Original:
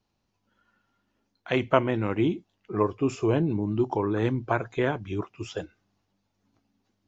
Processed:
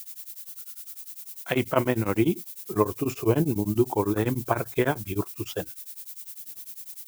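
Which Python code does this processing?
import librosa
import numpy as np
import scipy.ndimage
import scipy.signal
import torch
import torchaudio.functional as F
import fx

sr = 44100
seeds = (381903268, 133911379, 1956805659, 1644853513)

y = fx.dmg_noise_colour(x, sr, seeds[0], colour='violet', level_db=-42.0)
y = y * np.abs(np.cos(np.pi * 10.0 * np.arange(len(y)) / sr))
y = y * librosa.db_to_amplitude(4.0)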